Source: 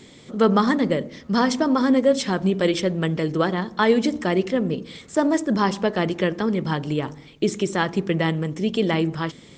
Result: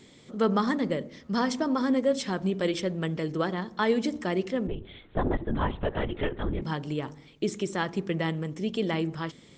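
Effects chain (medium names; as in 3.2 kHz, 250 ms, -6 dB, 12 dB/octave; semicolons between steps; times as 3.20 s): 4.67–6.62 s: LPC vocoder at 8 kHz whisper; trim -7 dB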